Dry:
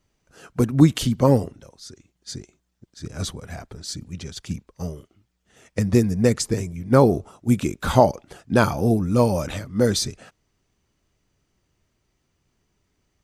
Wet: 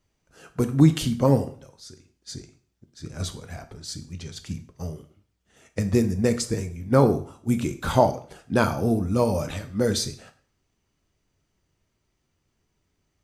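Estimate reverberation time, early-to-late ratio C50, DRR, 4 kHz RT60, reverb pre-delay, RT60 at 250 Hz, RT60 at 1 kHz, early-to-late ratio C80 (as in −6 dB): 0.50 s, 13.5 dB, 8.0 dB, 0.45 s, 5 ms, 0.50 s, 0.50 s, 17.5 dB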